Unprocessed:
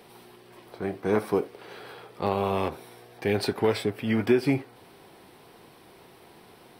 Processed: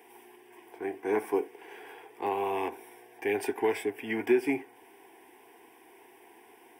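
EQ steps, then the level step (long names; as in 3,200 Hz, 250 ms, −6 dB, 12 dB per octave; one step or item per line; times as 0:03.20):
Bessel high-pass filter 290 Hz, order 2
phaser with its sweep stopped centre 850 Hz, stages 8
0.0 dB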